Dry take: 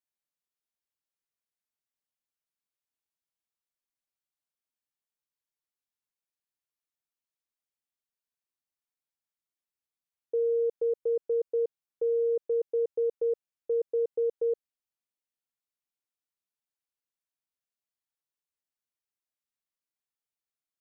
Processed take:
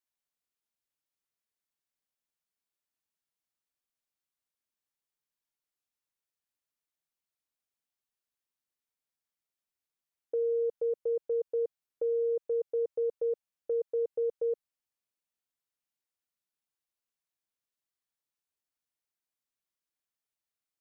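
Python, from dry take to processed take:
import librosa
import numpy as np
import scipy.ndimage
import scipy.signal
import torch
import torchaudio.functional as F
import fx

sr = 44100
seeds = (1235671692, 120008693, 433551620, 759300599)

y = fx.dynamic_eq(x, sr, hz=310.0, q=1.6, threshold_db=-44.0, ratio=4.0, max_db=-7)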